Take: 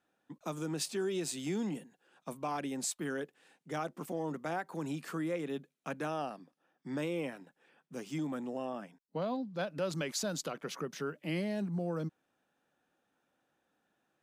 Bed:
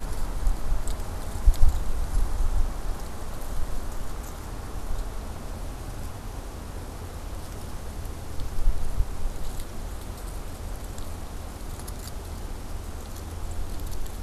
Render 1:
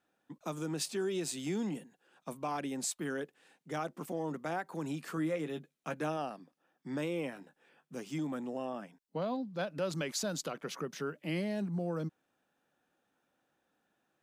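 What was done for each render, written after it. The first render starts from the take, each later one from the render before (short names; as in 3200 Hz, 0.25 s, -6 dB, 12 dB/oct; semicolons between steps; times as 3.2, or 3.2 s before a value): 5.16–6.17 doubler 13 ms -8 dB; 7.34–7.95 doubler 20 ms -7 dB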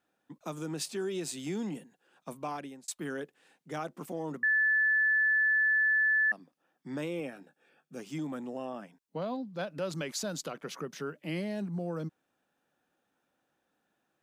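2.48–2.88 fade out; 4.43–6.32 bleep 1740 Hz -23 dBFS; 7.2–8 notch comb 1000 Hz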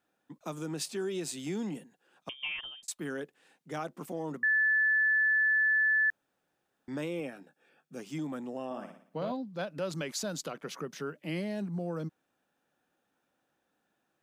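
2.29–2.83 inverted band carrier 3400 Hz; 6.1–6.88 room tone; 8.65–9.32 flutter echo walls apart 10 m, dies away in 0.53 s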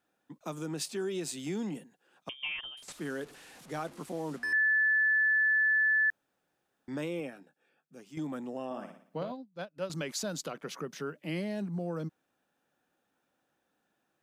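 2.77–4.53 delta modulation 64 kbps, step -47 dBFS; 7.16–8.17 fade out quadratic, to -9 dB; 9.23–9.9 upward expander 2.5:1, over -46 dBFS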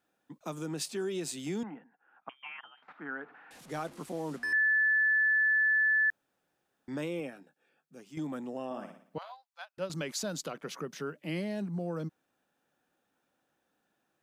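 1.63–3.51 speaker cabinet 300–2000 Hz, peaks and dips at 380 Hz -10 dB, 550 Hz -8 dB, 810 Hz +6 dB, 1400 Hz +7 dB; 9.18–9.78 elliptic high-pass 770 Hz, stop band 60 dB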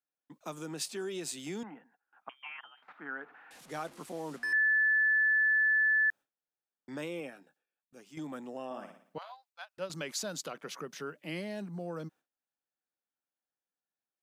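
gate with hold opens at -55 dBFS; low shelf 380 Hz -7 dB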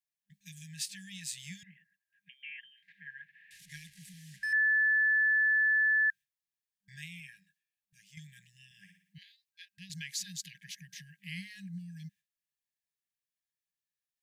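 FFT band-reject 200–1600 Hz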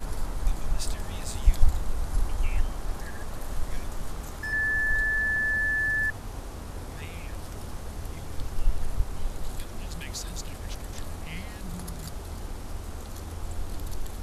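add bed -1.5 dB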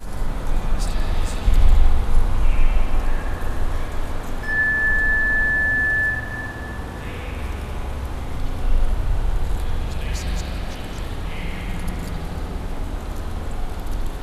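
spring tank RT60 3 s, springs 44/48/59 ms, chirp 25 ms, DRR -8.5 dB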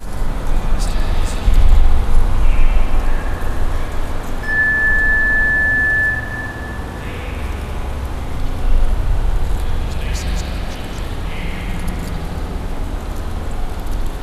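gain +4.5 dB; limiter -1 dBFS, peak gain reduction 2.5 dB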